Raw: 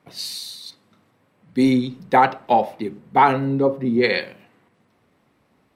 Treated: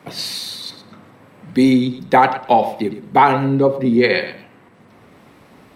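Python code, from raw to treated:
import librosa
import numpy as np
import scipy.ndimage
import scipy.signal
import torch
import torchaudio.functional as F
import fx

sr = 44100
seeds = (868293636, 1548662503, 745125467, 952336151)

y = fx.echo_feedback(x, sr, ms=111, feedback_pct=16, wet_db=-13.5)
y = fx.band_squash(y, sr, depth_pct=40)
y = y * librosa.db_to_amplitude(4.0)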